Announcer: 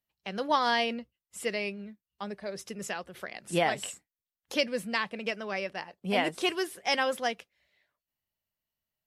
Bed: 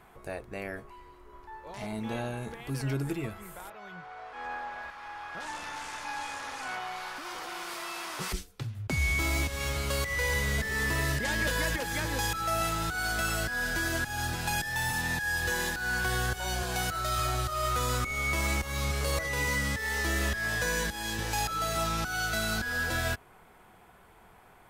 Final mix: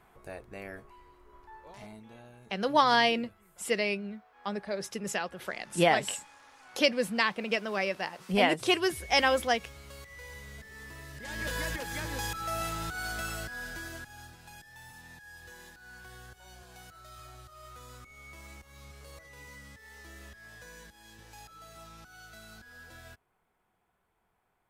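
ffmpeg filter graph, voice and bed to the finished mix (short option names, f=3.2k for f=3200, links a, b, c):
-filter_complex "[0:a]adelay=2250,volume=3dB[a];[1:a]volume=8dB,afade=t=out:st=1.63:d=0.42:silence=0.237137,afade=t=in:st=11.13:d=0.41:silence=0.223872,afade=t=out:st=12.97:d=1.39:silence=0.16788[b];[a][b]amix=inputs=2:normalize=0"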